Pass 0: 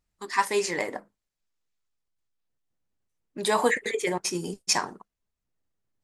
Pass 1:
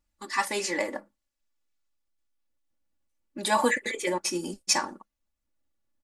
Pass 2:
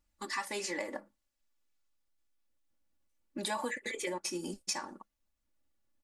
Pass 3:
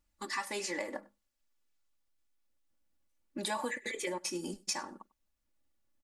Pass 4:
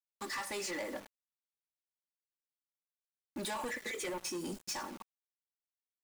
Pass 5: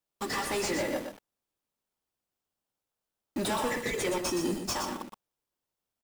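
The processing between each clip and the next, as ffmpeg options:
-af "aecho=1:1:3.5:0.82,volume=-2dB"
-af "acompressor=threshold=-35dB:ratio=4"
-af "aecho=1:1:98:0.0668"
-af "acrusher=bits=8:mix=0:aa=0.000001,asoftclip=type=tanh:threshold=-38dB,volume=3dB"
-filter_complex "[0:a]asplit=2[a][b];[b]acrusher=samples=20:mix=1:aa=0.000001,volume=-4dB[c];[a][c]amix=inputs=2:normalize=0,aecho=1:1:120:0.473,volume=5dB"

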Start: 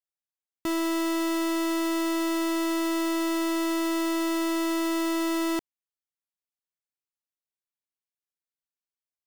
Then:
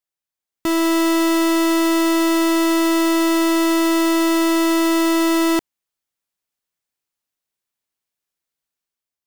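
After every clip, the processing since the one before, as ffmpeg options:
-af "dynaudnorm=f=170:g=7:m=5.5dB,volume=4.5dB"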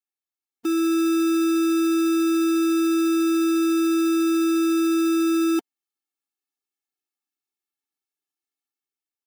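-af "lowshelf=f=150:g=10,afftfilt=real='re*eq(mod(floor(b*sr/1024/230),2),1)':imag='im*eq(mod(floor(b*sr/1024/230),2),1)':win_size=1024:overlap=0.75,volume=-4.5dB"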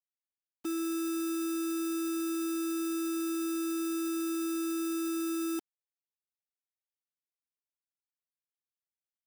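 -filter_complex "[0:a]acrossover=split=6800[a][b];[a]alimiter=limit=-24dB:level=0:latency=1:release=39[c];[c][b]amix=inputs=2:normalize=0,aeval=exprs='val(0)*gte(abs(val(0)),0.00708)':c=same,volume=-3dB"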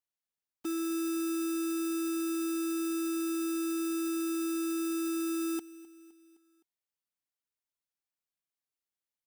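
-af "aecho=1:1:258|516|774|1032:0.1|0.054|0.0292|0.0157"

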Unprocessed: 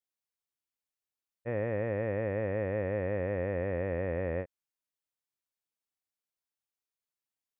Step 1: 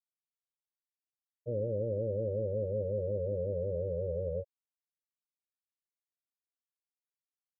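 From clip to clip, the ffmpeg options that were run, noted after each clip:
-af "afftfilt=real='re*gte(hypot(re,im),0.0794)':imag='im*gte(hypot(re,im),0.0794)':win_size=1024:overlap=0.75"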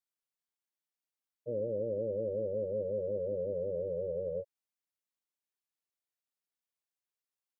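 -af "highpass=180"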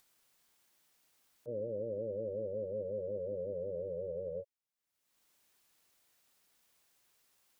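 -af "acompressor=mode=upward:threshold=-48dB:ratio=2.5,volume=-4dB"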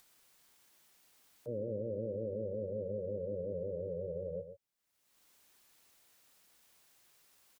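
-filter_complex "[0:a]aecho=1:1:124:0.282,acrossover=split=380[a][b];[b]alimiter=level_in=19.5dB:limit=-24dB:level=0:latency=1:release=490,volume=-19.5dB[c];[a][c]amix=inputs=2:normalize=0,volume=5dB"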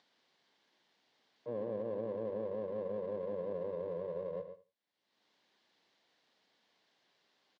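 -af "aeval=exprs='if(lt(val(0),0),0.447*val(0),val(0))':c=same,highpass=f=140:w=0.5412,highpass=f=140:w=1.3066,equalizer=f=150:t=q:w=4:g=-5,equalizer=f=1.3k:t=q:w=4:g=-7,equalizer=f=2.5k:t=q:w=4:g=-6,lowpass=f=4.3k:w=0.5412,lowpass=f=4.3k:w=1.3066,aecho=1:1:81|162:0.178|0.0302,volume=3dB"

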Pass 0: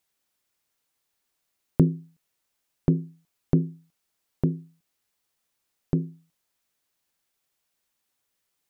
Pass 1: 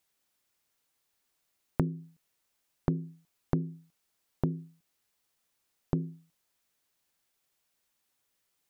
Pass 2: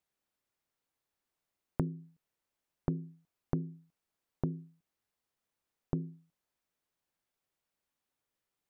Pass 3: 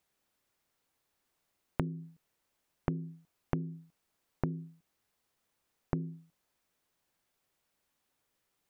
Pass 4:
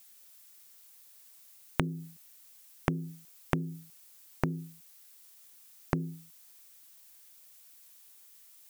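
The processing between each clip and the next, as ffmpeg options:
-af "acompressor=threshold=-25dB:ratio=5"
-af "highshelf=f=2.2k:g=-9,volume=-4dB"
-af "acompressor=threshold=-38dB:ratio=3,volume=7.5dB"
-af "crystalizer=i=10:c=0,volume=2dB"

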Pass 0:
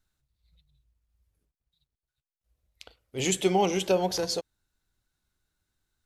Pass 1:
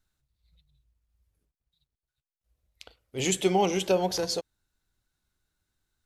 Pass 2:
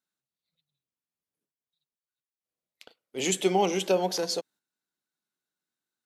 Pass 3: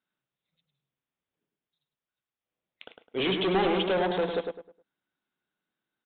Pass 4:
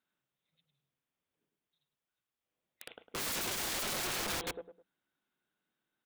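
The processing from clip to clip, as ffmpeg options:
-af anull
-af "highpass=f=180:w=0.5412,highpass=f=180:w=1.3066,agate=range=-8dB:threshold=-54dB:ratio=16:detection=peak"
-filter_complex "[0:a]aresample=8000,volume=28.5dB,asoftclip=hard,volume=-28.5dB,aresample=44100,asplit=2[a][b];[b]adelay=104,lowpass=f=2k:p=1,volume=-4.5dB,asplit=2[c][d];[d]adelay=104,lowpass=f=2k:p=1,volume=0.31,asplit=2[e][f];[f]adelay=104,lowpass=f=2k:p=1,volume=0.31,asplit=2[g][h];[h]adelay=104,lowpass=f=2k:p=1,volume=0.31[i];[a][c][e][g][i]amix=inputs=5:normalize=0,volume=5dB"
-af "aeval=exprs='(mod(37.6*val(0)+1,2)-1)/37.6':c=same,bandreject=f=60:t=h:w=6,bandreject=f=120:t=h:w=6,bandreject=f=180:t=h:w=6"

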